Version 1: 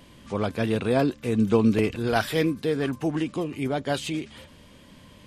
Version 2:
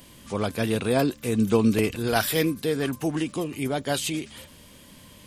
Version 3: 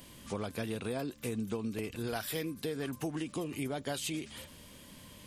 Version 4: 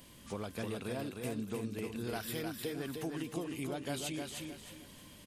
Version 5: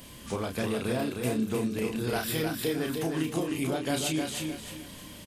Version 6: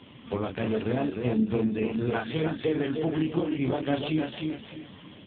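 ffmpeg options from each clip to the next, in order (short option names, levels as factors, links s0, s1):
-af "aemphasis=mode=production:type=50fm"
-af "acompressor=threshold=0.0355:ratio=10,volume=0.668"
-af "aecho=1:1:308|616|924|1232:0.596|0.185|0.0572|0.0177,volume=0.668"
-filter_complex "[0:a]asplit=2[s0][s1];[s1]adelay=32,volume=0.562[s2];[s0][s2]amix=inputs=2:normalize=0,volume=2.51"
-af "volume=1.58" -ar 8000 -c:a libopencore_amrnb -b:a 5150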